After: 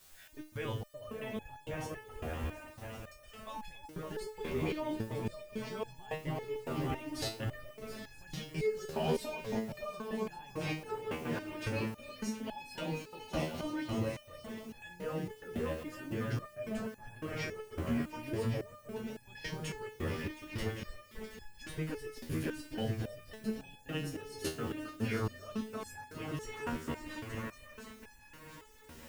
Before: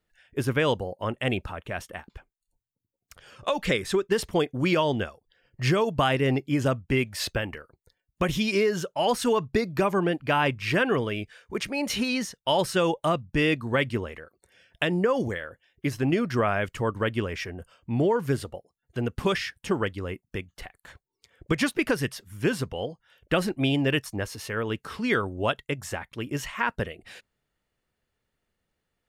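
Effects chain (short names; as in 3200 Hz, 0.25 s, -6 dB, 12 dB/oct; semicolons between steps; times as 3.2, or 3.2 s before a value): low shelf 92 Hz +10.5 dB; compressor 6:1, threshold -33 dBFS, peak gain reduction 15 dB; limiter -27.5 dBFS, peak gain reduction 10.5 dB; repeats that get brighter 0.28 s, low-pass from 750 Hz, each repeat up 1 oct, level 0 dB; step gate "xxxx.xxx.xx" 144 bpm -60 dB; requantised 10-bit, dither triangular; swung echo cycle 0.958 s, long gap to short 3:1, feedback 43%, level -12.5 dB; stepped resonator 3.6 Hz 79–850 Hz; gain +9 dB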